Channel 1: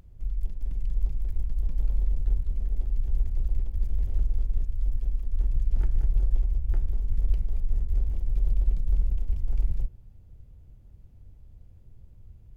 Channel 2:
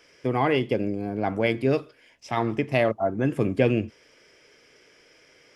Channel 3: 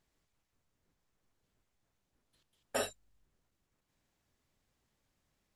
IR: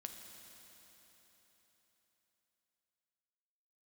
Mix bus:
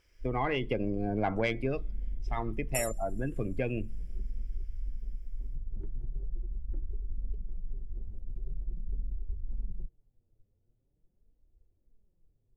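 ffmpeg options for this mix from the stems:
-filter_complex "[0:a]flanger=delay=2.1:depth=7.9:regen=21:speed=0.43:shape=triangular,equalizer=f=390:t=o:w=2.2:g=14,volume=-8dB[a];[1:a]equalizer=f=310:w=0.47:g=-5.5,dynaudnorm=f=210:g=9:m=11.5dB,volume=-1.5dB,afade=t=out:st=1.25:d=0.51:silence=0.281838,asplit=3[b][c][d];[c]volume=-20.5dB[e];[2:a]aexciter=amount=4.8:drive=8.1:freq=5.4k,volume=-3.5dB,asplit=2[f][g];[g]volume=-7.5dB[h];[d]apad=whole_len=245003[i];[f][i]sidechaincompress=threshold=-23dB:ratio=8:attack=10:release=592[j];[3:a]atrim=start_sample=2205[k];[e][h]amix=inputs=2:normalize=0[l];[l][k]afir=irnorm=-1:irlink=0[m];[a][b][j][m]amix=inputs=4:normalize=0,afftdn=nr=14:nf=-35,asoftclip=type=tanh:threshold=-11dB,acompressor=threshold=-28dB:ratio=2.5"

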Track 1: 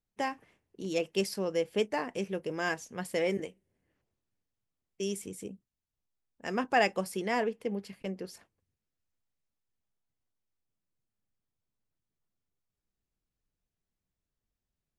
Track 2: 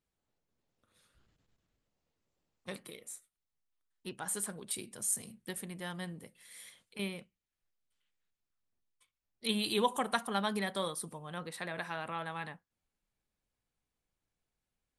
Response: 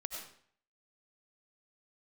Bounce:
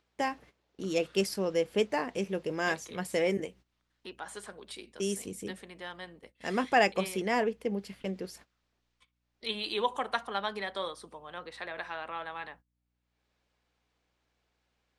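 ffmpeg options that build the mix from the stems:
-filter_complex "[0:a]aeval=exprs='val(0)+0.000447*(sin(2*PI*60*n/s)+sin(2*PI*2*60*n/s)/2+sin(2*PI*3*60*n/s)/3+sin(2*PI*4*60*n/s)/4+sin(2*PI*5*60*n/s)/5)':c=same,volume=1.5dB[a];[1:a]acrossover=split=280 6000:gain=0.0891 1 0.0631[b][c][d];[b][c][d]amix=inputs=3:normalize=0,acompressor=mode=upward:threshold=-44dB:ratio=2.5,volume=1dB[e];[a][e]amix=inputs=2:normalize=0,agate=range=-15dB:threshold=-53dB:ratio=16:detection=peak"

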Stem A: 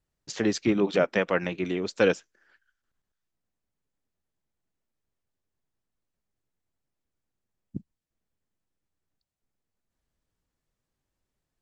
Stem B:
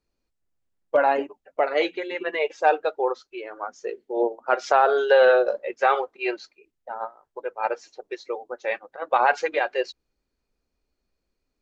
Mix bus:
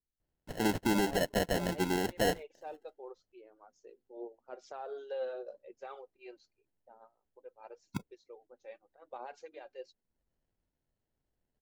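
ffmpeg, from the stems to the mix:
-filter_complex "[0:a]lowpass=f=6.3k:w=0.5412,lowpass=f=6.3k:w=1.3066,acrusher=samples=37:mix=1:aa=0.000001,adelay=200,volume=-2dB[a];[1:a]equalizer=f=1.6k:w=0.51:g=-13,flanger=delay=0.1:depth=3.8:regen=58:speed=0.87:shape=sinusoidal,volume=-14dB[b];[a][b]amix=inputs=2:normalize=0,alimiter=limit=-21.5dB:level=0:latency=1:release=24"

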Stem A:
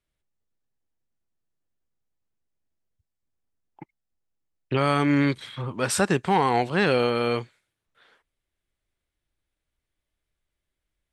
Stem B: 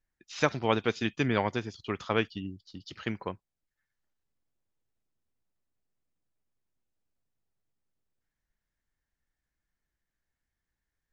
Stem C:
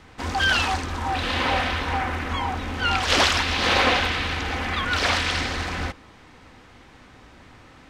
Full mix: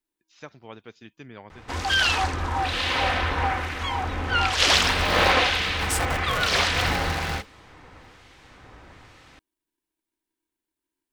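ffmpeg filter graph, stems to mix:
-filter_complex "[0:a]aemphasis=mode=production:type=50kf,aeval=exprs='val(0)*sgn(sin(2*PI*320*n/s))':c=same,volume=-9dB[a];[1:a]volume=-16dB[b];[2:a]equalizer=f=230:w=2.8:g=-7,acrossover=split=2100[c][d];[c]aeval=exprs='val(0)*(1-0.5/2+0.5/2*cos(2*PI*1.1*n/s))':c=same[e];[d]aeval=exprs='val(0)*(1-0.5/2-0.5/2*cos(2*PI*1.1*n/s))':c=same[f];[e][f]amix=inputs=2:normalize=0,adelay=1500,volume=2.5dB[g];[a][b][g]amix=inputs=3:normalize=0"

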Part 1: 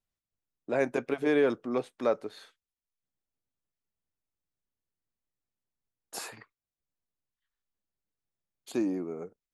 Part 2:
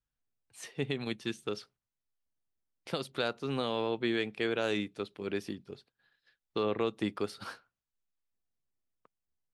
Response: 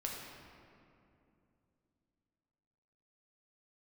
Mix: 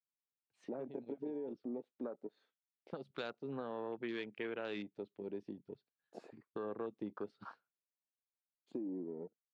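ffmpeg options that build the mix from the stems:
-filter_complex "[0:a]acompressor=threshold=-30dB:ratio=12,equalizer=f=240:w=0.62:g=8,volume=-7dB,asplit=2[a][b];[1:a]volume=-2dB[c];[b]apad=whole_len=420509[d];[c][d]sidechaincompress=threshold=-42dB:ratio=16:attack=12:release=1210[e];[a][e]amix=inputs=2:normalize=0,afwtdn=0.00794,highpass=150,lowpass=4.2k,acompressor=threshold=-44dB:ratio=2"

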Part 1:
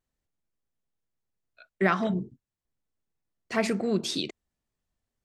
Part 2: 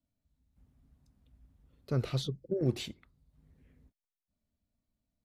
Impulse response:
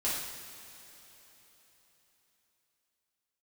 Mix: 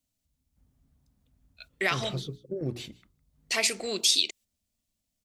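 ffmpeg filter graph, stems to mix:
-filter_complex "[0:a]highpass=390,agate=range=-9dB:threshold=-56dB:ratio=16:detection=peak,aexciter=amount=5.9:drive=5:freq=2.2k,volume=-1.5dB[a];[1:a]bandreject=f=60:t=h:w=6,bandreject=f=120:t=h:w=6,bandreject=f=180:t=h:w=6,bandreject=f=240:t=h:w=6,bandreject=f=300:t=h:w=6,bandreject=f=360:t=h:w=6,bandreject=f=420:t=h:w=6,volume=-1dB,asplit=2[b][c];[c]volume=-23.5dB,aecho=0:1:158:1[d];[a][b][d]amix=inputs=3:normalize=0,acompressor=threshold=-28dB:ratio=1.5"

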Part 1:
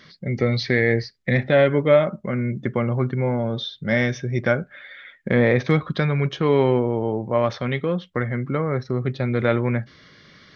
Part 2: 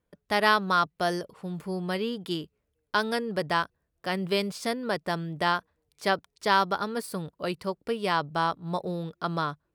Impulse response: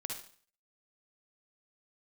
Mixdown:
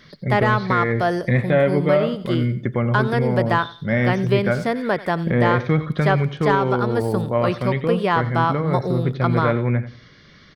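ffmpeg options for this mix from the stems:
-filter_complex "[0:a]lowshelf=f=90:g=11.5,volume=-0.5dB,asplit=2[a][b];[b]volume=-14dB[c];[1:a]aeval=exprs='0.422*sin(PI/2*1.58*val(0)/0.422)':c=same,volume=0.5dB,asplit=2[d][e];[e]volume=-19.5dB[f];[c][f]amix=inputs=2:normalize=0,aecho=0:1:90|180|270|360:1|0.24|0.0576|0.0138[g];[a][d][g]amix=inputs=3:normalize=0,acrossover=split=2800[h][i];[i]acompressor=threshold=-43dB:ratio=4:attack=1:release=60[j];[h][j]amix=inputs=2:normalize=0,alimiter=limit=-7dB:level=0:latency=1:release=443"

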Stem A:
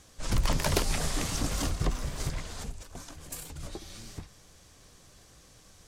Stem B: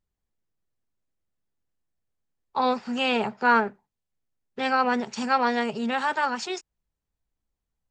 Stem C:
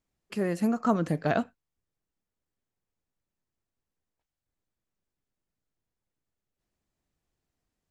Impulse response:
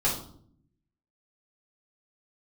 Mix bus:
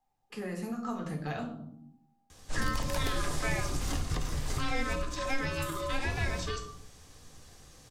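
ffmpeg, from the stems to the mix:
-filter_complex "[0:a]adelay=2300,volume=-1dB,asplit=2[a][b];[b]volume=-15.5dB[c];[1:a]aeval=exprs='val(0)*sin(2*PI*800*n/s)':c=same,volume=-2.5dB,asplit=2[d][e];[e]volume=-10dB[f];[2:a]volume=-11.5dB,asplit=2[g][h];[h]volume=-3.5dB[i];[3:a]atrim=start_sample=2205[j];[c][f][i]amix=inputs=3:normalize=0[k];[k][j]afir=irnorm=-1:irlink=0[l];[a][d][g][l]amix=inputs=4:normalize=0,acrossover=split=92|1200|3000[m][n][o][p];[m]acompressor=threshold=-30dB:ratio=4[q];[n]acompressor=threshold=-36dB:ratio=4[r];[o]acompressor=threshold=-42dB:ratio=4[s];[p]acompressor=threshold=-41dB:ratio=4[t];[q][r][s][t]amix=inputs=4:normalize=0"

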